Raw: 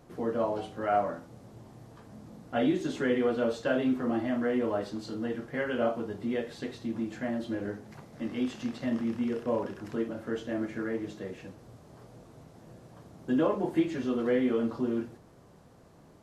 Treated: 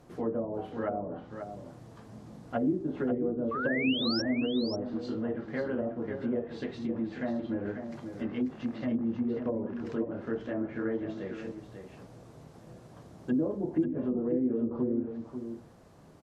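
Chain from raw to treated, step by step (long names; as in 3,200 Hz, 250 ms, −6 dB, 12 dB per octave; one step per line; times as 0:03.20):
treble cut that deepens with the level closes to 380 Hz, closed at −25 dBFS
sound drawn into the spectrogram rise, 0:03.51–0:04.22, 1,100–5,700 Hz −34 dBFS
single-tap delay 540 ms −8 dB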